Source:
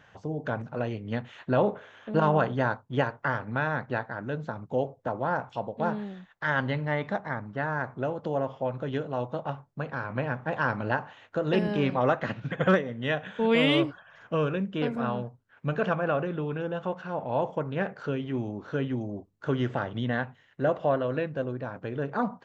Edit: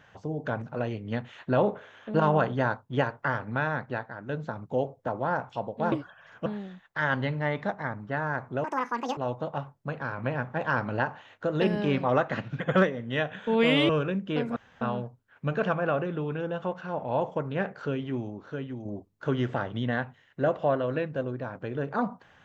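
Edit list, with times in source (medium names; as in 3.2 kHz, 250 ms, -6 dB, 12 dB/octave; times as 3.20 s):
3.65–4.29 s: fade out, to -6.5 dB
8.10–9.09 s: speed 186%
13.81–14.35 s: move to 5.92 s
15.02 s: insert room tone 0.25 s
18.27–19.06 s: fade out quadratic, to -7 dB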